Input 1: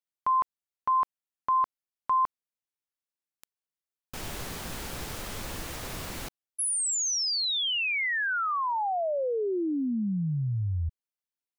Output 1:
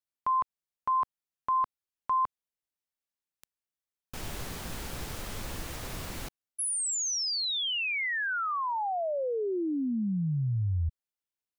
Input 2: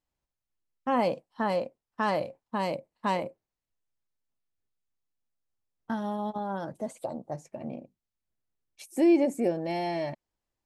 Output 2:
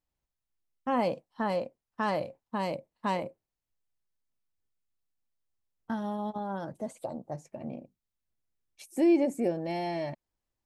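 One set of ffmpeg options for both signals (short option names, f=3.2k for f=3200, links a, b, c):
-af "lowshelf=f=160:g=4,volume=-2.5dB"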